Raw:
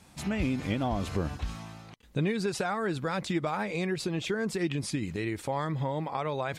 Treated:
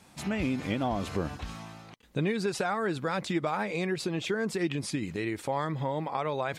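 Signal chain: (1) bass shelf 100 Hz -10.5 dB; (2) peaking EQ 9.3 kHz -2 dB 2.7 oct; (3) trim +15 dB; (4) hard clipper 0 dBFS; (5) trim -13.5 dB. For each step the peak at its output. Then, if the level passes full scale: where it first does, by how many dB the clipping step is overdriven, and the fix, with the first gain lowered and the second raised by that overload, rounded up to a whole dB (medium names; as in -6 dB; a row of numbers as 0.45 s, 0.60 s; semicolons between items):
-18.0 dBFS, -18.5 dBFS, -3.5 dBFS, -3.5 dBFS, -17.0 dBFS; nothing clips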